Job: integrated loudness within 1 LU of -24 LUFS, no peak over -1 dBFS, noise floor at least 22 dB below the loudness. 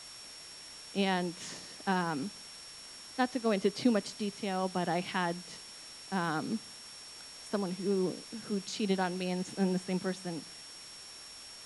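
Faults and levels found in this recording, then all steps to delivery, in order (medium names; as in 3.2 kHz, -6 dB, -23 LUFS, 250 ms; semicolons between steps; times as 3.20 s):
steady tone 5.5 kHz; tone level -49 dBFS; noise floor -49 dBFS; noise floor target -56 dBFS; loudness -34.0 LUFS; peak level -15.5 dBFS; loudness target -24.0 LUFS
-> band-stop 5.5 kHz, Q 30; noise reduction 7 dB, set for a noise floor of -49 dBFS; trim +10 dB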